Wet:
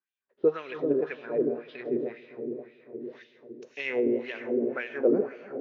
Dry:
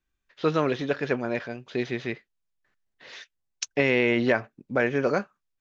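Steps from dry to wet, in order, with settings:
0:01.21–0:01.98: elliptic low-pass filter 5,400 Hz
on a send: delay with a low-pass on its return 280 ms, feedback 69%, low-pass 600 Hz, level −3.5 dB
on the sum: dense smooth reverb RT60 3.5 s, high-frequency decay 1×, DRR 8.5 dB
auto-filter band-pass sine 1.9 Hz 310–3,100 Hz
0:03.99–0:04.73: downward compressor 2 to 1, threshold −30 dBFS, peak gain reduction 5 dB
hollow resonant body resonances 210/400 Hz, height 10 dB, ringing for 20 ms
level −3.5 dB

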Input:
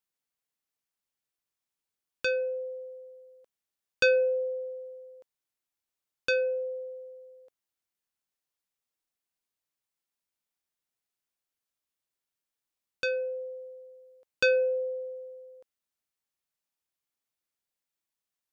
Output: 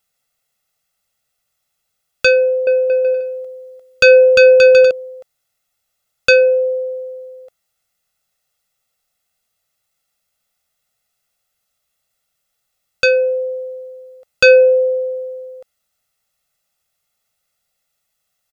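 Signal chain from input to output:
comb filter 1.5 ms, depth 82%
0:02.32–0:04.91: bouncing-ball delay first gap 350 ms, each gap 0.65×, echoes 5
boost into a limiter +15 dB
level −1 dB

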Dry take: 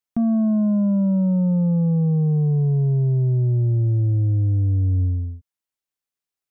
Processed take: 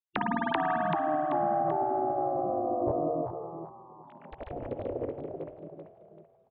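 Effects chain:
three sine waves on the formant tracks
echo with shifted repeats 386 ms, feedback 34%, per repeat +39 Hz, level −3 dB
spring reverb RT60 3 s, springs 50 ms, chirp 75 ms, DRR 14.5 dB
gate on every frequency bin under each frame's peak −15 dB weak
formants moved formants +5 semitones
level +5 dB

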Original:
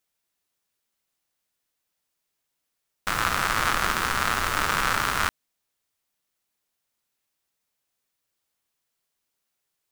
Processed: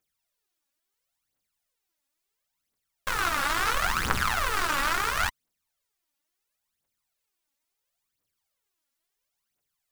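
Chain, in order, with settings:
phase shifter 0.73 Hz, delay 3.7 ms, feedback 69%
level −5 dB

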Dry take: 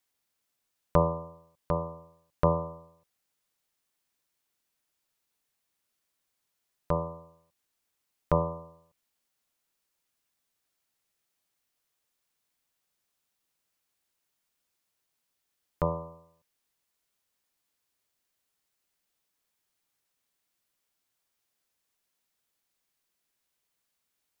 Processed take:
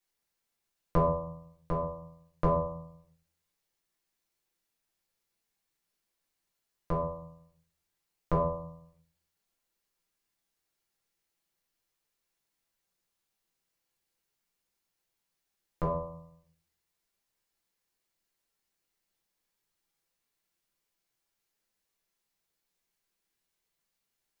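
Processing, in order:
rectangular room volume 39 cubic metres, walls mixed, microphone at 0.77 metres
level −6.5 dB

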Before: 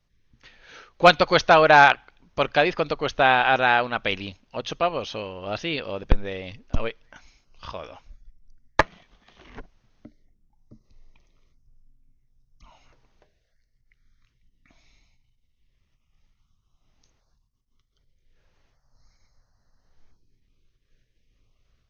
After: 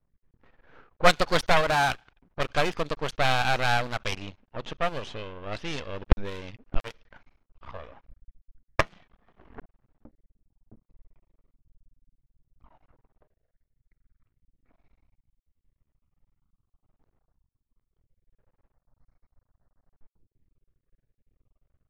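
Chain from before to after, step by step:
half-wave rectification
0:01.61–0:02.40: tube saturation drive 7 dB, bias 0.4
low-pass that shuts in the quiet parts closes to 1,100 Hz, open at −23.5 dBFS

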